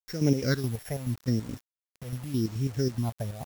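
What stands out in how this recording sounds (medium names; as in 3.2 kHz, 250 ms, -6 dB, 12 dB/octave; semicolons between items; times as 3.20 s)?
a buzz of ramps at a fixed pitch in blocks of 8 samples; chopped level 4.7 Hz, depth 60%, duty 55%; phasing stages 6, 0.84 Hz, lowest notch 290–1200 Hz; a quantiser's noise floor 8-bit, dither none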